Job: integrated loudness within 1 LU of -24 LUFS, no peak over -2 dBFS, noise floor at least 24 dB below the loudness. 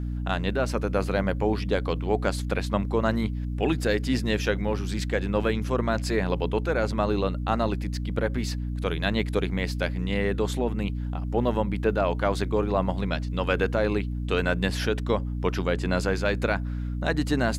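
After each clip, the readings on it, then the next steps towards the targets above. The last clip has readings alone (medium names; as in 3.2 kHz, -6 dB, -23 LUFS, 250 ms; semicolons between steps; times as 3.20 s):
hum 60 Hz; highest harmonic 300 Hz; hum level -27 dBFS; loudness -26.5 LUFS; peak level -9.0 dBFS; loudness target -24.0 LUFS
-> hum notches 60/120/180/240/300 Hz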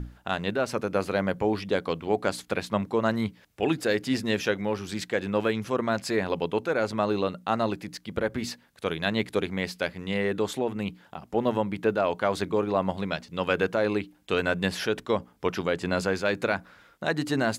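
hum not found; loudness -28.0 LUFS; peak level -10.0 dBFS; loudness target -24.0 LUFS
-> trim +4 dB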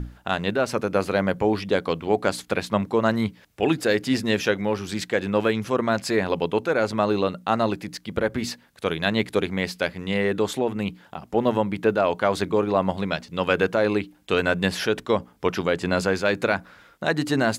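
loudness -24.0 LUFS; peak level -6.0 dBFS; noise floor -55 dBFS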